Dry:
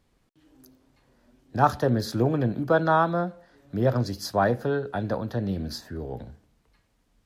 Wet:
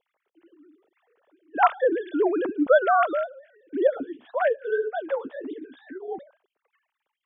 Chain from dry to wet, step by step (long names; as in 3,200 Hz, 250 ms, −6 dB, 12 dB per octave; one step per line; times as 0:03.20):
three sine waves on the formant tracks
0:03.87–0:06.08: flanger 1.8 Hz, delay 5.6 ms, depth 9.8 ms, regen −18%
level +1.5 dB